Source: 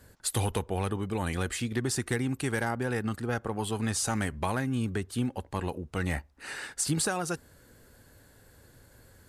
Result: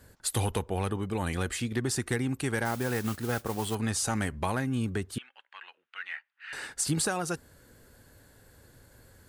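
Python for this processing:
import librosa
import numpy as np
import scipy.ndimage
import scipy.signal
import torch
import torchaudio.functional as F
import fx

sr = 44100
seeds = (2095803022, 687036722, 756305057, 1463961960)

y = fx.mod_noise(x, sr, seeds[0], snr_db=13, at=(2.65, 3.75))
y = fx.cheby1_bandpass(y, sr, low_hz=1500.0, high_hz=3100.0, order=2, at=(5.18, 6.53))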